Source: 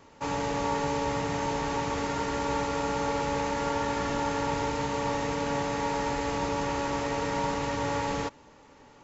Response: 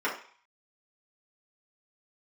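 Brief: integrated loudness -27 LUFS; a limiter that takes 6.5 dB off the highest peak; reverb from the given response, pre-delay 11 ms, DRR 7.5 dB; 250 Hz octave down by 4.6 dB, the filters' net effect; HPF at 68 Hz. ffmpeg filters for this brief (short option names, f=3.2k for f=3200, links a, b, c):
-filter_complex "[0:a]highpass=68,equalizer=f=250:t=o:g=-5.5,alimiter=limit=-23.5dB:level=0:latency=1,asplit=2[a][b];[1:a]atrim=start_sample=2205,adelay=11[c];[b][c]afir=irnorm=-1:irlink=0,volume=-18.5dB[d];[a][d]amix=inputs=2:normalize=0,volume=4.5dB"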